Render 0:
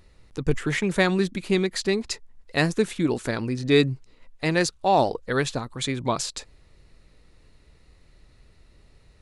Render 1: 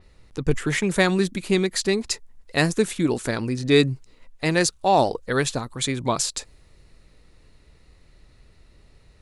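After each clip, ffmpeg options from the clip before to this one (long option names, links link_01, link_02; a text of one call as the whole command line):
ffmpeg -i in.wav -af "adynamicequalizer=threshold=0.00631:dfrequency=6000:dqfactor=0.7:tfrequency=6000:tqfactor=0.7:attack=5:release=100:ratio=0.375:range=3.5:mode=boostabove:tftype=highshelf,volume=1.5dB" out.wav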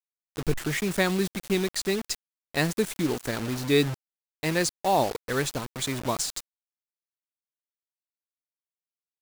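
ffmpeg -i in.wav -af "acrusher=bits=4:mix=0:aa=0.000001,volume=-5dB" out.wav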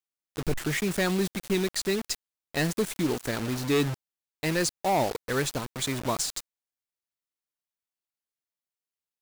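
ffmpeg -i in.wav -af "asoftclip=type=hard:threshold=-19.5dB" out.wav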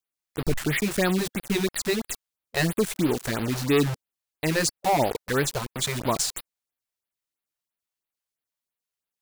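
ffmpeg -i in.wav -af "afftfilt=real='re*(1-between(b*sr/1024,220*pow(7300/220,0.5+0.5*sin(2*PI*3*pts/sr))/1.41,220*pow(7300/220,0.5+0.5*sin(2*PI*3*pts/sr))*1.41))':imag='im*(1-between(b*sr/1024,220*pow(7300/220,0.5+0.5*sin(2*PI*3*pts/sr))/1.41,220*pow(7300/220,0.5+0.5*sin(2*PI*3*pts/sr))*1.41))':win_size=1024:overlap=0.75,volume=3.5dB" out.wav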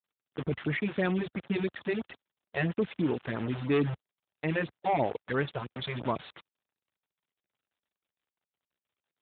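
ffmpeg -i in.wav -af "volume=-5dB" -ar 8000 -c:a libopencore_amrnb -b:a 12200 out.amr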